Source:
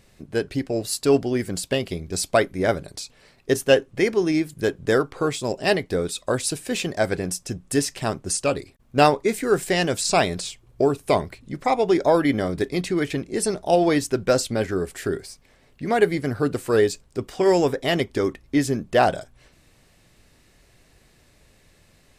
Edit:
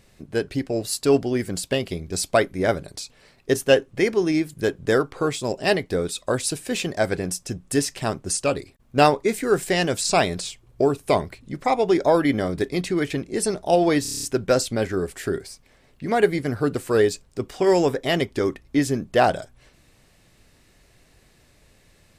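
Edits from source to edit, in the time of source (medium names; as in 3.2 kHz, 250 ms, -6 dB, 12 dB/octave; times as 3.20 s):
14.02 s: stutter 0.03 s, 8 plays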